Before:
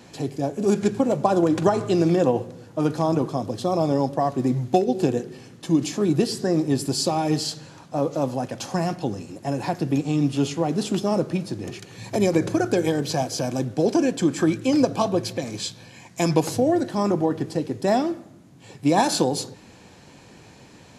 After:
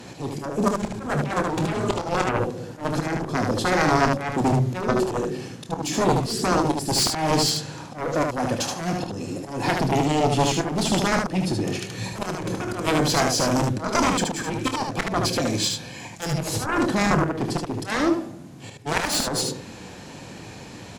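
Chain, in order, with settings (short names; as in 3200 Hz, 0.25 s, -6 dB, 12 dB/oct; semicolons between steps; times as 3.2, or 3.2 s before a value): added harmonics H 2 -11 dB, 4 -32 dB, 7 -7 dB, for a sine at -5.5 dBFS; auto swell 0.214 s; early reflections 27 ms -10.5 dB, 75 ms -4 dB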